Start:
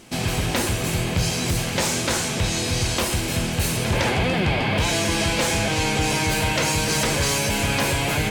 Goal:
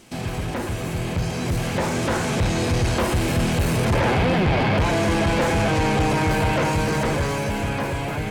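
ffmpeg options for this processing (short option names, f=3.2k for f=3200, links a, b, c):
-filter_complex "[0:a]acrossover=split=2500[a][b];[b]acompressor=threshold=-32dB:ratio=4:attack=1:release=60[c];[a][c]amix=inputs=2:normalize=0,acrossover=split=1800[d][e];[e]alimiter=level_in=5dB:limit=-24dB:level=0:latency=1,volume=-5dB[f];[d][f]amix=inputs=2:normalize=0,dynaudnorm=f=330:g=11:m=12dB,asoftclip=type=tanh:threshold=-12.5dB,volume=-2.5dB"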